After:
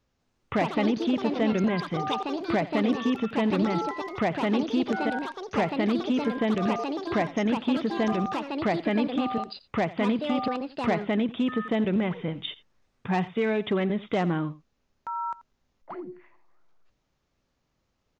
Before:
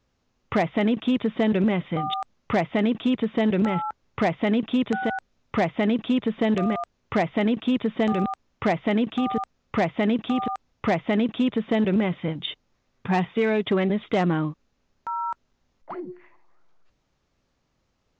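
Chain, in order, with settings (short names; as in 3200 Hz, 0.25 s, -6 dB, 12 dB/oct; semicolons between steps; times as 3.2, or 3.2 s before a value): echoes that change speed 0.197 s, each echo +5 st, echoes 2, each echo -6 dB; echo 86 ms -18.5 dB; gain -3.5 dB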